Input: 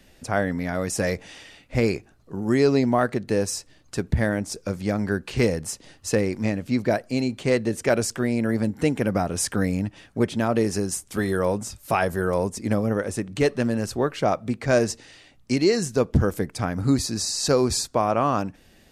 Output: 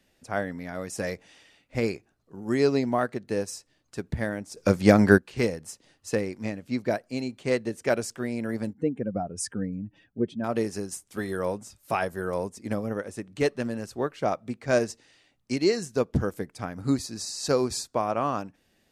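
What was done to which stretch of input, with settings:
0:04.57–0:05.18: clip gain +10 dB
0:08.73–0:10.44: expanding power law on the bin magnitudes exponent 1.8
whole clip: low-shelf EQ 86 Hz −8.5 dB; expander for the loud parts 1.5 to 1, over −34 dBFS

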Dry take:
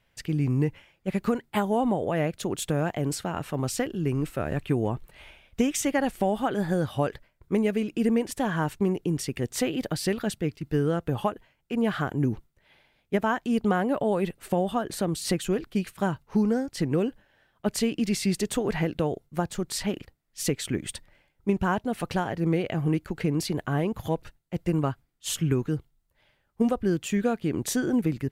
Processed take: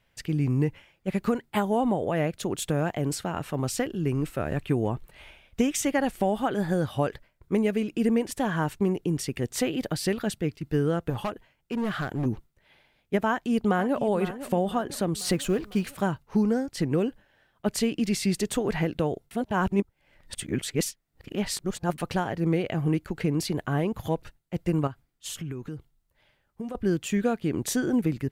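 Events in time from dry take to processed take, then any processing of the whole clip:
0:11.10–0:12.26: hard clipping −24.5 dBFS
0:13.28–0:14.00: delay throw 500 ms, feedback 45%, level −12.5 dB
0:15.19–0:16.01: mu-law and A-law mismatch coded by mu
0:19.31–0:21.98: reverse
0:24.87–0:26.75: downward compressor 4 to 1, threshold −33 dBFS

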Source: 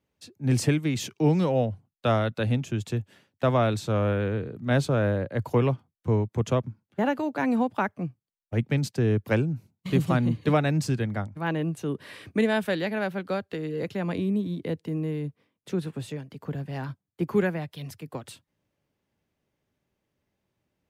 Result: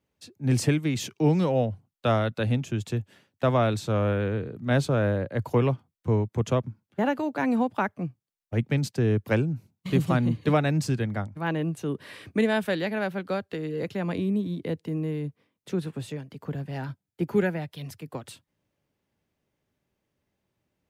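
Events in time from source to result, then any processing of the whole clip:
0:16.74–0:17.70: Butterworth band-reject 1,100 Hz, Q 6.8

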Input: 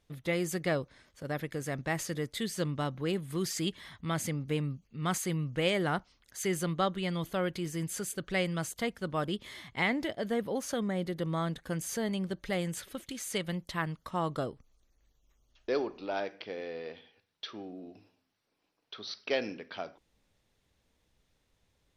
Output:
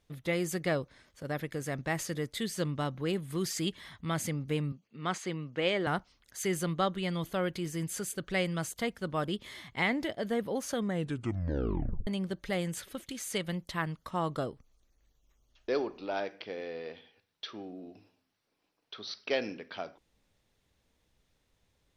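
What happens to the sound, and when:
0:04.72–0:05.87: band-pass filter 220–4,900 Hz
0:10.89: tape stop 1.18 s

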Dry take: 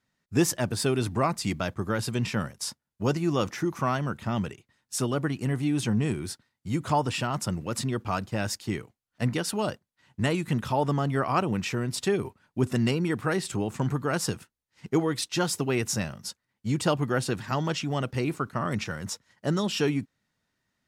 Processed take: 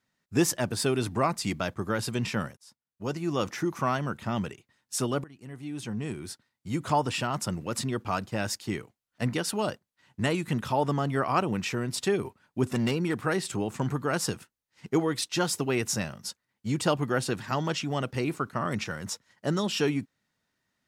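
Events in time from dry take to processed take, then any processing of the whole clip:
0:02.57–0:03.54: fade in
0:05.24–0:06.86: fade in, from −23 dB
0:12.72–0:13.17: hard clipping −20 dBFS
whole clip: low-shelf EQ 120 Hz −6 dB

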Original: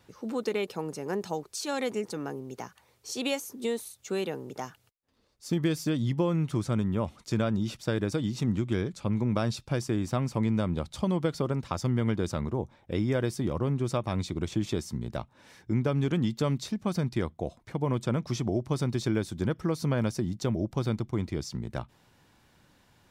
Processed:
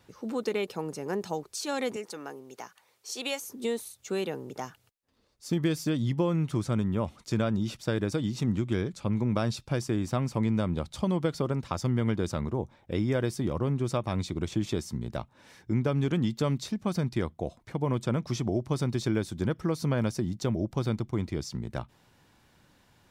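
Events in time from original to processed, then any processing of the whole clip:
0:01.96–0:03.42: high-pass filter 640 Hz 6 dB per octave

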